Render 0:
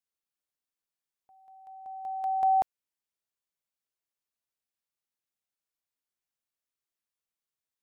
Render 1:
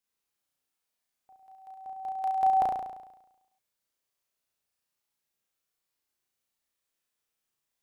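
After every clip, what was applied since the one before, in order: flutter echo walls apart 5.9 m, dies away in 0.97 s; gain +3 dB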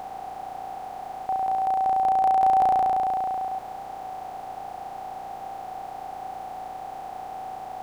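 per-bin compression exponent 0.2; gain +2.5 dB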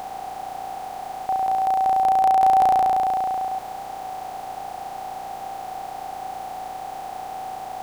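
high shelf 2500 Hz +7.5 dB; gain +2.5 dB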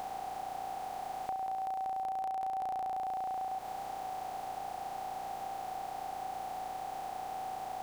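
compressor 8:1, threshold -28 dBFS, peak gain reduction 14 dB; gain -6.5 dB

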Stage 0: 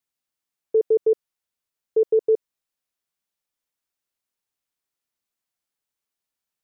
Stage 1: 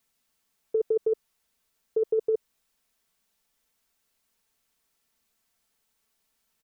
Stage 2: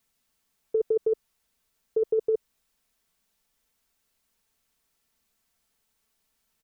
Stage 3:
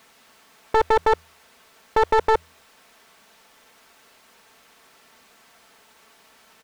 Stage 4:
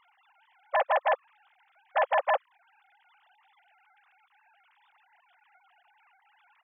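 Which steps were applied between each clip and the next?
low shelf 110 Hz +6 dB; comb 4.5 ms, depth 45%; negative-ratio compressor -23 dBFS, ratio -1
low shelf 150 Hz +5 dB
one-sided fold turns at -27 dBFS; overdrive pedal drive 32 dB, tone 1200 Hz, clips at -15.5 dBFS; de-hum 81.3 Hz, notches 2; gain +6.5 dB
sine-wave speech; gain -7 dB

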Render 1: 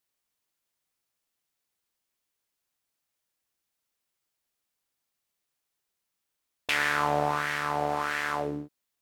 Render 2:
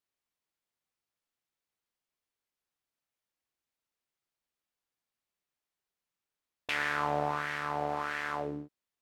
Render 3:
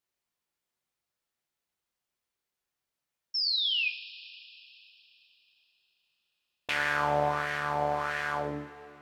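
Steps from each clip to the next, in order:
high shelf 5600 Hz -9 dB; gain -4.5 dB
painted sound fall, 3.34–3.89, 2400–5500 Hz -31 dBFS; two-slope reverb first 0.36 s, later 3.8 s, from -17 dB, DRR 4.5 dB; gain +1.5 dB

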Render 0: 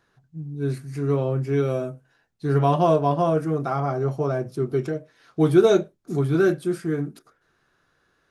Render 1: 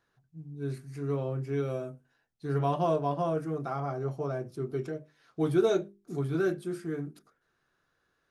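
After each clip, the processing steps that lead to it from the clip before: notches 50/100/150/200/250/300/350/400 Hz; gain -8.5 dB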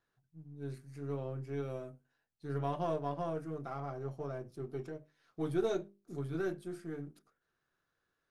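half-wave gain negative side -3 dB; gain -6.5 dB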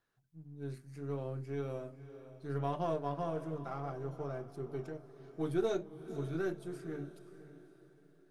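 diffused feedback echo 0.536 s, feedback 40%, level -13.5 dB

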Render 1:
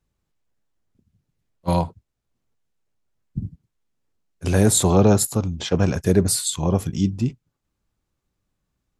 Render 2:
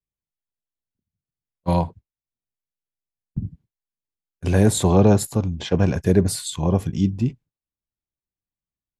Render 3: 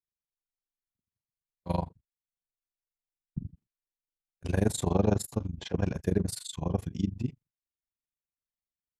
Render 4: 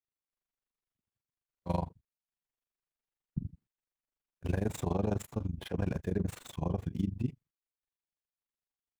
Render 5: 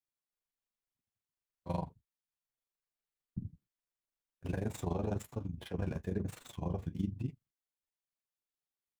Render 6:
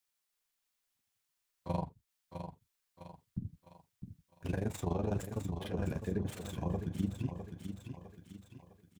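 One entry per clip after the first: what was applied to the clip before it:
notch 1300 Hz, Q 7.9; gate with hold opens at -38 dBFS; tone controls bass +1 dB, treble -7 dB
AM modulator 24 Hz, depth 90%; gain -6.5 dB
median filter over 9 samples; limiter -20 dBFS, peak gain reduction 10 dB
flange 1.1 Hz, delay 6 ms, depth 7.3 ms, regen -41%
on a send: feedback echo 0.656 s, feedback 37%, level -9 dB; on the sum: mismatched tape noise reduction encoder only; gain +1 dB

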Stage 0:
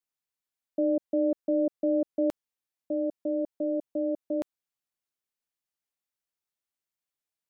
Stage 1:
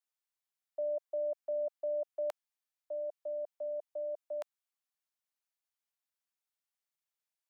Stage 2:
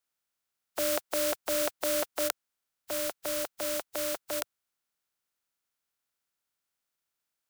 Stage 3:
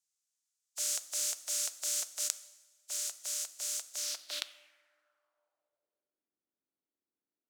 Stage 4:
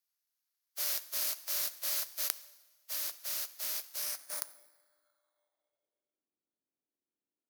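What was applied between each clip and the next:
steep high-pass 600 Hz 36 dB/oct; gain -2.5 dB
spectral contrast lowered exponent 0.31; bell 1400 Hz +5.5 dB 0.25 oct; gain +6 dB
two-slope reverb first 0.93 s, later 2.7 s, from -18 dB, DRR 12.5 dB; band-pass sweep 6900 Hz -> 300 Hz, 3.93–6.26; gain +7 dB
FFT order left unsorted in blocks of 16 samples

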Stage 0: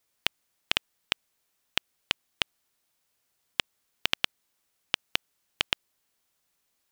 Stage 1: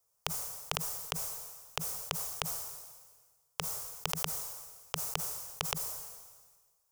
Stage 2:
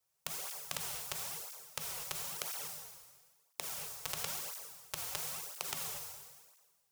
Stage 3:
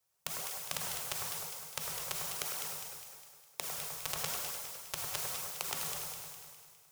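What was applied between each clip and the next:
Chebyshev band-stop 160–430 Hz, order 3; band shelf 2600 Hz -13 dB; sustainer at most 40 dB/s; gain +1 dB
spectral contrast lowered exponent 0.39; non-linear reverb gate 0.27 s flat, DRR 1.5 dB; tape flanging out of phase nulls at 0.99 Hz, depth 5.3 ms; gain -2.5 dB
echo with dull and thin repeats by turns 0.102 s, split 1900 Hz, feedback 71%, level -4 dB; gain +1.5 dB

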